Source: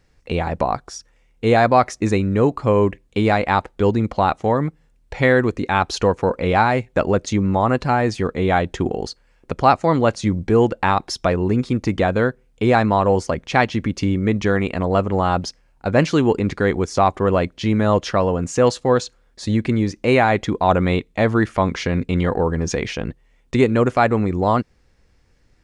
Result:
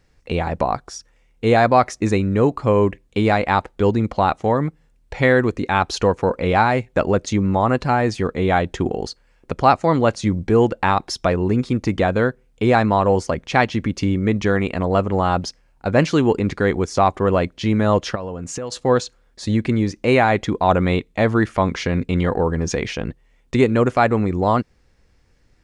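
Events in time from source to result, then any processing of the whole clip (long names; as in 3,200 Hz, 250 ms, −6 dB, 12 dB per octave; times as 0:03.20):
0:18.15–0:18.72: downward compressor 12 to 1, threshold −24 dBFS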